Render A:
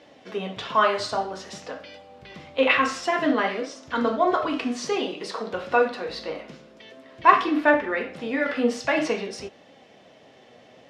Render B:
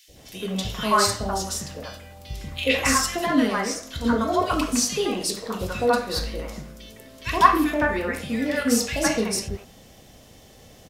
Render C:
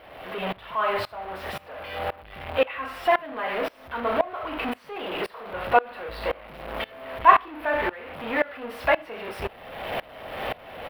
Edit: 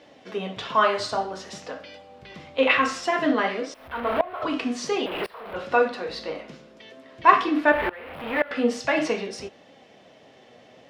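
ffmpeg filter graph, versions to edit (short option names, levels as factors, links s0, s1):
-filter_complex "[2:a]asplit=3[s0][s1][s2];[0:a]asplit=4[s3][s4][s5][s6];[s3]atrim=end=3.742[s7];[s0]atrim=start=3.738:end=4.422[s8];[s4]atrim=start=4.418:end=5.062[s9];[s1]atrim=start=5.058:end=5.562[s10];[s5]atrim=start=5.558:end=7.722[s11];[s2]atrim=start=7.718:end=8.512[s12];[s6]atrim=start=8.508[s13];[s7][s8]acrossfade=d=0.004:c1=hsin:c2=hsin[s14];[s14][s9]acrossfade=d=0.004:c1=hsin:c2=hsin[s15];[s15][s10]acrossfade=d=0.004:c1=hsin:c2=hsin[s16];[s16][s11]acrossfade=d=0.004:c1=hsin:c2=hsin[s17];[s17][s12]acrossfade=d=0.004:c1=hsin:c2=hsin[s18];[s18][s13]acrossfade=d=0.004:c1=hsin:c2=hsin"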